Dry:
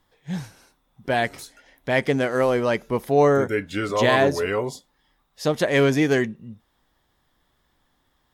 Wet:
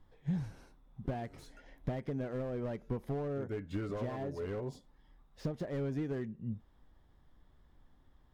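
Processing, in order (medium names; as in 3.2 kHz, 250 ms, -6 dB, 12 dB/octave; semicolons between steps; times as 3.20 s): compression 12:1, threshold -33 dBFS, peak gain reduction 20.5 dB; tilt EQ -3 dB/octave; slew-rate limiter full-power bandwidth 17 Hz; trim -5 dB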